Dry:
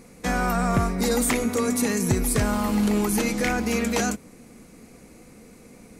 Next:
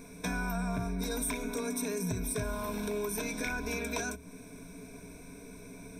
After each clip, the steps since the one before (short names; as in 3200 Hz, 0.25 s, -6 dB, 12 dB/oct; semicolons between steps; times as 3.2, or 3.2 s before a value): ripple EQ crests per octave 1.6, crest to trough 17 dB; compressor 3:1, threshold -32 dBFS, peak gain reduction 14 dB; gain -3 dB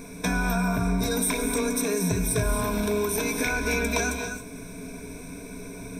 non-linear reverb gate 0.3 s rising, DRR 5.5 dB; gain +8 dB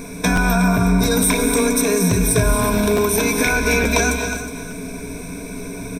echo 0.365 s -13 dB; crackling interface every 0.87 s, samples 512, repeat, from 0.35; gain +8.5 dB